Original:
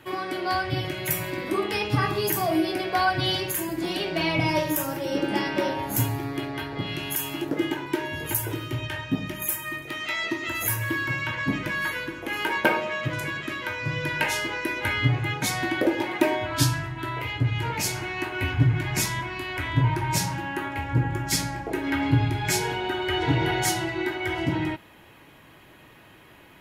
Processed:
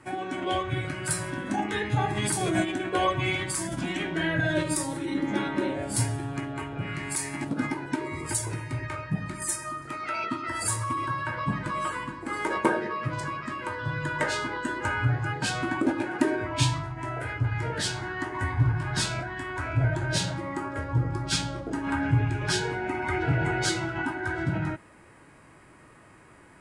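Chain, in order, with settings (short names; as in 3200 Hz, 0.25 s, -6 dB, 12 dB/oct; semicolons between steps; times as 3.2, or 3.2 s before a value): formant shift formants -6 st; gain -2 dB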